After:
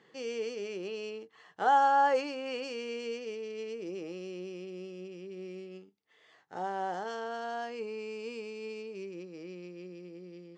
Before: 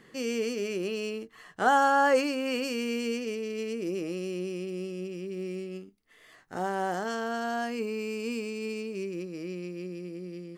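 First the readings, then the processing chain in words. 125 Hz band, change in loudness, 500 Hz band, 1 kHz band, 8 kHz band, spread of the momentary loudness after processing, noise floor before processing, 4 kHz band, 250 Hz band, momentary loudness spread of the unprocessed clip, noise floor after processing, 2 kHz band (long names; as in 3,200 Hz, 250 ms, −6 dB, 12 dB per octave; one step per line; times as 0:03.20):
−10.0 dB, −3.5 dB, −5.0 dB, −0.5 dB, −10.5 dB, 19 LU, −58 dBFS, −6.0 dB, −10.5 dB, 14 LU, −64 dBFS, −7.0 dB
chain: loudspeaker in its box 140–6,700 Hz, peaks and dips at 240 Hz −6 dB, 470 Hz +4 dB, 840 Hz +8 dB, 3,400 Hz +4 dB
level −7.5 dB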